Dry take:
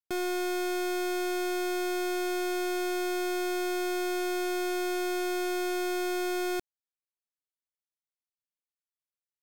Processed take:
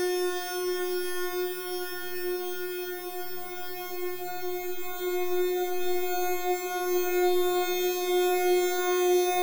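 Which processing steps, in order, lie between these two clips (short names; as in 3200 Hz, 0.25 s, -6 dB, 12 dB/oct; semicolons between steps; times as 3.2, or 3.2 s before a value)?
moving spectral ripple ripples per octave 1.2, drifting -0.93 Hz, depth 12 dB; spectral delete 0.42–0.93, 280–12000 Hz; Paulstretch 16×, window 1.00 s, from 0.44; gain +5 dB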